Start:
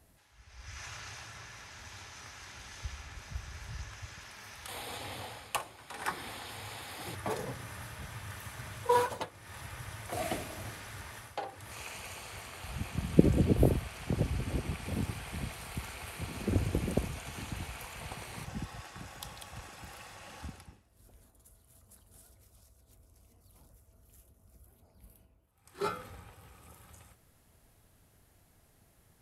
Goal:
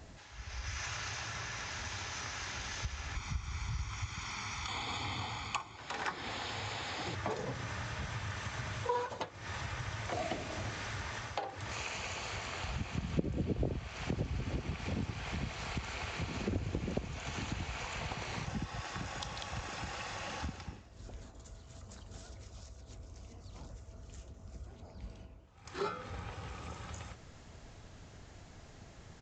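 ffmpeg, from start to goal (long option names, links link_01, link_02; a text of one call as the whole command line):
ffmpeg -i in.wav -filter_complex "[0:a]asettb=1/sr,asplit=3[link_01][link_02][link_03];[link_01]atrim=end=3.154[link_04];[link_02]atrim=start=3.15:end=5.77,asetpts=PTS-STARTPTS,afade=type=in:duration=0.004:curve=qsin,afade=type=out:start_time=2.616:duration=0.004:curve=qsin,aecho=1:1:0.9:0.74,atrim=end_sample=115542[link_05];[link_03]atrim=start=5.766[link_06];[link_04][link_05]acrossfade=duration=0.004:curve1=hsin:curve2=qsin[link_07];[link_07][link_06]acrossfade=duration=0.004:curve1=qsin:curve2=hsin,acompressor=threshold=-51dB:ratio=3,aresample=16000,aresample=44100,volume=12dB" out.wav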